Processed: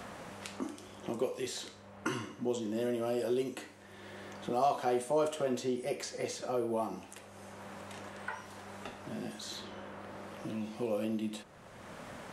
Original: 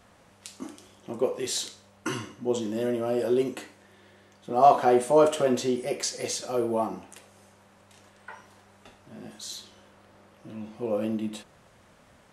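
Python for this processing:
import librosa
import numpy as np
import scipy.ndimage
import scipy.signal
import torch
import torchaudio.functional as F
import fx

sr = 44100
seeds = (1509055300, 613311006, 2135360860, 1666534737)

y = fx.band_squash(x, sr, depth_pct=70)
y = y * 10.0 ** (-6.0 / 20.0)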